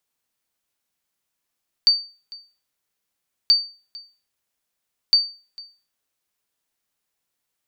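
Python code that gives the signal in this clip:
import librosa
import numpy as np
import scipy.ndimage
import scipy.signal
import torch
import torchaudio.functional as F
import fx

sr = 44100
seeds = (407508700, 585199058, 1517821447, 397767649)

y = fx.sonar_ping(sr, hz=4600.0, decay_s=0.35, every_s=1.63, pings=3, echo_s=0.45, echo_db=-23.0, level_db=-7.5)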